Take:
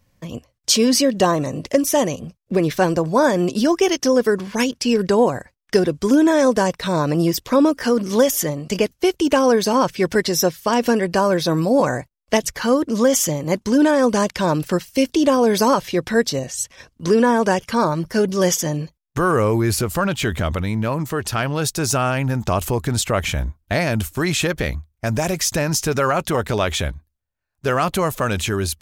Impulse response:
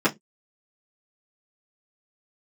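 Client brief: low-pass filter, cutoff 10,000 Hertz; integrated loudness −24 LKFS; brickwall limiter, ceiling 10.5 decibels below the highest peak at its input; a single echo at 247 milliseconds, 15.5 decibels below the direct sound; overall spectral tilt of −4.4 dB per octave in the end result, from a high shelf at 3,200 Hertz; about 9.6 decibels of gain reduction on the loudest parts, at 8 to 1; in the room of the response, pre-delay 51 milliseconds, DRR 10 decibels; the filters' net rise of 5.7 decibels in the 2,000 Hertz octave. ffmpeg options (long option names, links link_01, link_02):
-filter_complex "[0:a]lowpass=10000,equalizer=frequency=2000:width_type=o:gain=6.5,highshelf=frequency=3200:gain=3,acompressor=threshold=-20dB:ratio=8,alimiter=limit=-18.5dB:level=0:latency=1,aecho=1:1:247:0.168,asplit=2[link_01][link_02];[1:a]atrim=start_sample=2205,adelay=51[link_03];[link_02][link_03]afir=irnorm=-1:irlink=0,volume=-26dB[link_04];[link_01][link_04]amix=inputs=2:normalize=0,volume=3dB"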